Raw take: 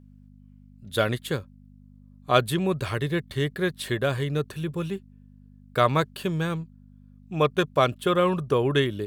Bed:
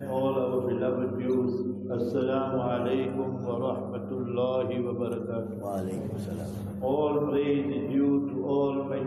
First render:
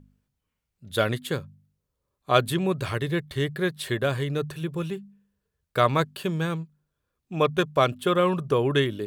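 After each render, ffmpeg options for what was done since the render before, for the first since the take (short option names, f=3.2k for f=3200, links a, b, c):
-af "bandreject=f=50:t=h:w=4,bandreject=f=100:t=h:w=4,bandreject=f=150:t=h:w=4,bandreject=f=200:t=h:w=4,bandreject=f=250:t=h:w=4"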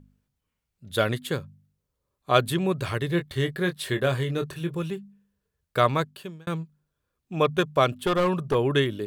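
-filter_complex "[0:a]asettb=1/sr,asplit=3[a][b][c];[a]atrim=end=3.084[d];[b]atrim=start=3.08:end=4.77,asetpts=PTS-STARTPTS,afade=t=in:d=0.004:c=qsin,afade=t=out:st=1.686:d=0.004:c=qsin,asplit=2[e][f];[f]adelay=23,volume=-8dB[g];[e][g]amix=inputs=2:normalize=0,atrim=end_sample=74529[h];[c]atrim=start=4.766[i];[d][h]acrossfade=d=0.004:c1=hsin:c2=qsin[j];[j][i]acrossfade=d=0.004:c1=qsin:c2=hsin,asettb=1/sr,asplit=3[k][l][m];[k]atrim=end=7.904[n];[l]atrim=start=7.9:end=8.55,asetpts=PTS-STARTPTS,afade=t=in:d=0.004:c=qsin,afade=t=out:st=0.646:d=0.004:c=qsin,aeval=exprs='clip(val(0),-1,0.0944)':c=same[o];[m]atrim=start=8.546[p];[n][o]acrossfade=d=0.004:c1=hsin:c2=qsin[q];[q][p]acrossfade=d=0.004:c1=qsin:c2=hsin,asplit=2[r][s];[r]atrim=end=6.47,asetpts=PTS-STARTPTS,afade=t=out:st=5.85:d=0.62[t];[s]atrim=start=6.47,asetpts=PTS-STARTPTS,afade=t=in:d=0.004:c=hsin[u];[t][u]concat=n=2:v=0:a=1"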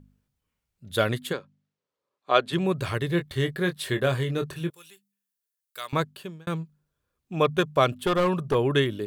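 -filter_complex "[0:a]asplit=3[a][b][c];[a]afade=t=out:st=1.32:d=0.02[d];[b]highpass=330,lowpass=4.8k,afade=t=in:st=1.32:d=0.02,afade=t=out:st=2.52:d=0.02[e];[c]afade=t=in:st=2.52:d=0.02[f];[d][e][f]amix=inputs=3:normalize=0,asettb=1/sr,asplit=3[g][h][i];[g]atrim=end=4.704[j];[h]atrim=start=4.7:end=5.93,asetpts=PTS-STARTPTS,afade=t=in:d=0.004:c=qsin,afade=t=out:st=1.226:d=0.004:c=qsin,aderivative[k];[i]atrim=start=5.926[l];[j][k]acrossfade=d=0.004:c1=hsin:c2=qsin[m];[m][l]acrossfade=d=0.004:c1=qsin:c2=hsin"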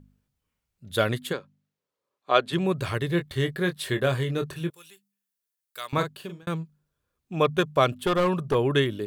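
-filter_complex "[0:a]asettb=1/sr,asplit=3[a][b][c];[a]atrim=end=5.934[d];[b]atrim=start=5.93:end=6.43,asetpts=PTS-STARTPTS,afade=t=in:d=0.004:c=qsin,afade=t=out:st=0.496:d=0.004:c=qsin,asplit=2[e][f];[f]adelay=41,volume=-7.5dB[g];[e][g]amix=inputs=2:normalize=0,atrim=end_sample=22050[h];[c]atrim=start=6.426[i];[d][h]acrossfade=d=0.004:c1=hsin:c2=qsin[j];[j][i]acrossfade=d=0.004:c1=qsin:c2=hsin"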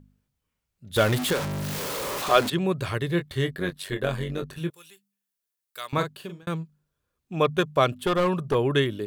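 -filter_complex "[0:a]asettb=1/sr,asplit=3[a][b][c];[a]atrim=end=0.964[d];[b]atrim=start=0.96:end=2.5,asetpts=PTS-STARTPTS,afade=t=in:d=0.004:c=qsin,afade=t=out:st=1.536:d=0.004:c=qsin,aeval=exprs='val(0)+0.5*0.0668*sgn(val(0))':c=same[e];[c]atrim=start=2.496[f];[d][e]acrossfade=d=0.004:c1=hsin:c2=qsin[g];[g][f]acrossfade=d=0.004:c1=qsin:c2=hsin,asettb=1/sr,asplit=3[h][i][j];[h]atrim=end=3.514[k];[i]atrim=start=3.51:end=4.58,asetpts=PTS-STARTPTS,afade=t=in:d=0.004:c=qsin,afade=t=out:st=1.066:d=0.004:c=qsin,tremolo=f=95:d=0.71[l];[j]atrim=start=4.576[m];[k][l]acrossfade=d=0.004:c1=hsin:c2=qsin[n];[n][m]acrossfade=d=0.004:c1=qsin:c2=hsin"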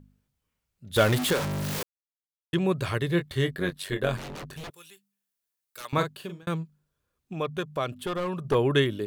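-filter_complex "[0:a]asettb=1/sr,asplit=3[a][b][c];[a]atrim=end=4.174[d];[b]atrim=start=4.17:end=5.85,asetpts=PTS-STARTPTS,afade=t=in:d=0.004:c=qsin,afade=t=out:st=1.676:d=0.004:c=qsin,aeval=exprs='0.02*(abs(mod(val(0)/0.02+3,4)-2)-1)':c=same[e];[c]atrim=start=5.846[f];[d][e]acrossfade=d=0.004:c1=hsin:c2=qsin[g];[g][f]acrossfade=d=0.004:c1=qsin:c2=hsin,asettb=1/sr,asplit=3[h][i][j];[h]atrim=end=7.334[k];[i]atrim=start=7.33:end=8.45,asetpts=PTS-STARTPTS,afade=t=in:d=0.004:c=qsin,afade=t=out:st=1.116:d=0.004:c=qsin,acompressor=threshold=-39dB:ratio=1.5:attack=3.2:release=140:knee=1:detection=peak[l];[j]atrim=start=8.446[m];[k][l]acrossfade=d=0.004:c1=hsin:c2=qsin[n];[n][m]acrossfade=d=0.004:c1=qsin:c2=hsin,asplit=3[o][p][q];[o]atrim=end=1.83,asetpts=PTS-STARTPTS,afade=t=out:st=1.826:d=0.004:c=hsin[r];[p]atrim=start=1.83:end=2.53,asetpts=PTS-STARTPTS,volume=0[s];[q]atrim=start=2.53,asetpts=PTS-STARTPTS,afade=t=in:d=0.004:c=hsin[t];[r][s][t]concat=n=3:v=0:a=1"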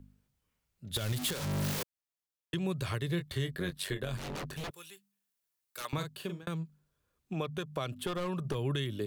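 -filter_complex "[0:a]acrossover=split=160|3000[a][b][c];[b]acompressor=threshold=-32dB:ratio=6[d];[a][d][c]amix=inputs=3:normalize=0,alimiter=limit=-23dB:level=0:latency=1:release=233"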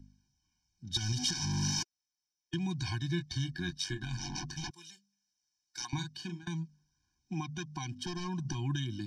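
-af "lowpass=f=5.6k:t=q:w=12,afftfilt=real='re*eq(mod(floor(b*sr/1024/360),2),0)':imag='im*eq(mod(floor(b*sr/1024/360),2),0)':win_size=1024:overlap=0.75"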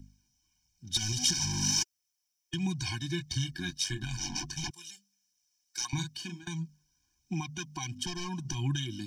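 -af "aexciter=amount=2:drive=3.5:freq=2.3k,aphaser=in_gain=1:out_gain=1:delay=4.4:decay=0.37:speed=1.5:type=triangular"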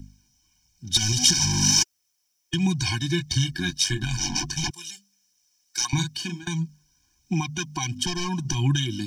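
-af "volume=9dB"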